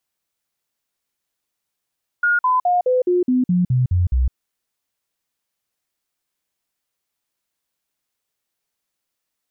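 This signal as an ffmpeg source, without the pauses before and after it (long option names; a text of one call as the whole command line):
ffmpeg -f lavfi -i "aevalsrc='0.211*clip(min(mod(t,0.21),0.16-mod(t,0.21))/0.005,0,1)*sin(2*PI*1430*pow(2,-floor(t/0.21)/2)*mod(t,0.21))':duration=2.1:sample_rate=44100" out.wav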